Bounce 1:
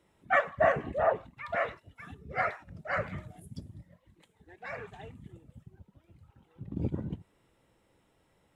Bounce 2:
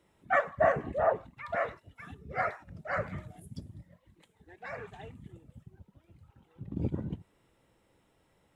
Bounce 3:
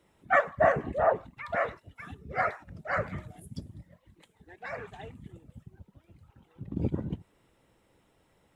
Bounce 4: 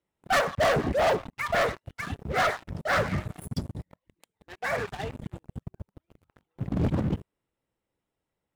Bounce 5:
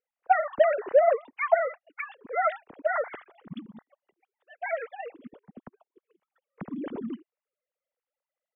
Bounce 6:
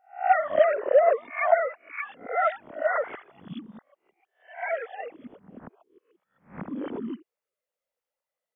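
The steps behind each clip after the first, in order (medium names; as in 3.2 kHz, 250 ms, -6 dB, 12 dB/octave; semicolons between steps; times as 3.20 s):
dynamic bell 2.9 kHz, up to -7 dB, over -49 dBFS, Q 1.4
harmonic-percussive split percussive +4 dB
waveshaping leveller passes 5; trim -8 dB
formants replaced by sine waves
reverse spectral sustain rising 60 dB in 0.34 s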